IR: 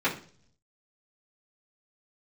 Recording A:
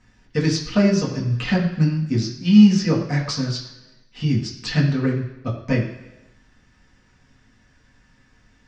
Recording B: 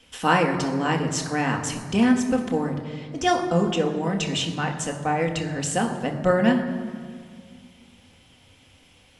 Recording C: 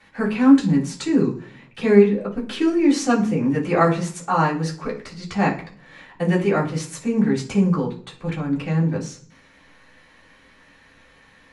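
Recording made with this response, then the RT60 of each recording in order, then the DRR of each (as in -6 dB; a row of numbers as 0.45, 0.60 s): C; 1.0, 1.9, 0.45 s; -4.0, 2.0, -11.5 dB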